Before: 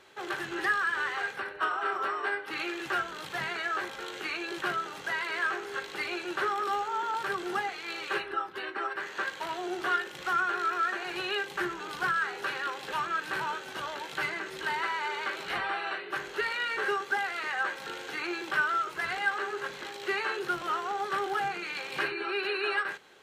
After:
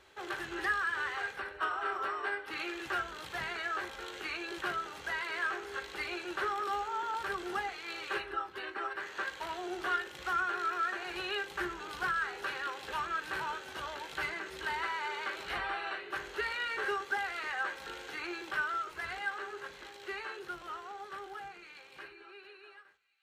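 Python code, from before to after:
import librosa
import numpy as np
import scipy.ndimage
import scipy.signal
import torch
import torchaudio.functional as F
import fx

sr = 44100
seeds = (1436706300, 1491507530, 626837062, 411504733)

p1 = fx.fade_out_tail(x, sr, length_s=5.85)
p2 = fx.low_shelf_res(p1, sr, hz=100.0, db=10.5, q=1.5)
p3 = p2 + fx.echo_wet_highpass(p2, sr, ms=734, feedback_pct=51, hz=2400.0, wet_db=-21.5, dry=0)
y = F.gain(torch.from_numpy(p3), -4.0).numpy()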